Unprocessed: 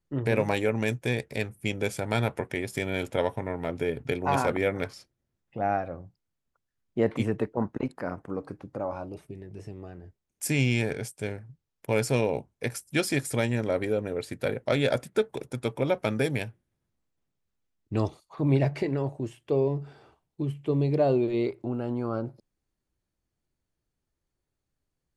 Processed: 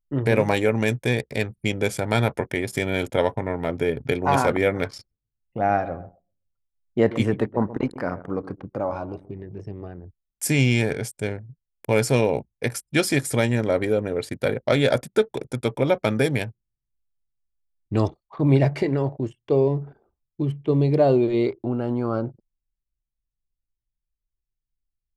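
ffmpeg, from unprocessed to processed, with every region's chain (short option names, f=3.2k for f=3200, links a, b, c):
-filter_complex "[0:a]asettb=1/sr,asplit=3[a][b][c];[a]atrim=end=4.864[d];[b]atrim=start=4.86:end=9.88,asetpts=PTS-STARTPTS,afade=t=in:d=0.004:c=qsin,afade=t=out:st=5.016:d=0.004:c=qsin,equalizer=f=3.7k:t=o:w=1.9:g=2.5,asplit=2[e][f];[f]adelay=129,lowpass=f=1.7k:p=1,volume=-15dB,asplit=2[g][h];[h]adelay=129,lowpass=f=1.7k:p=1,volume=0.41,asplit=2[i][j];[j]adelay=129,lowpass=f=1.7k:p=1,volume=0.41,asplit=2[k][l];[l]adelay=129,lowpass=f=1.7k:p=1,volume=0.41[m];[e][g][i][k][m]amix=inputs=5:normalize=0,atrim=end_sample=221382[n];[c]atrim=start=9.876[o];[d][n]acrossfade=d=0.004:c1=hsin:c2=qsin[p];[p][o]acrossfade=d=0.004:c1=qsin:c2=hsin,bandreject=f=2.6k:w=18,anlmdn=0.0158,volume=5.5dB"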